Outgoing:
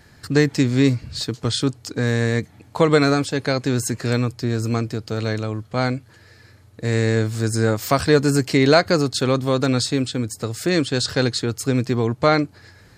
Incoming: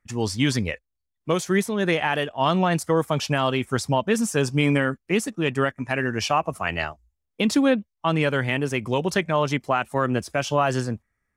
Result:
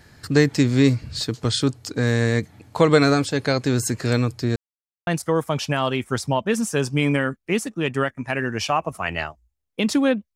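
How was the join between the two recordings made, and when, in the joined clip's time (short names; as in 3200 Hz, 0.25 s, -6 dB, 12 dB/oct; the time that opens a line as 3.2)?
outgoing
4.56–5.07 mute
5.07 switch to incoming from 2.68 s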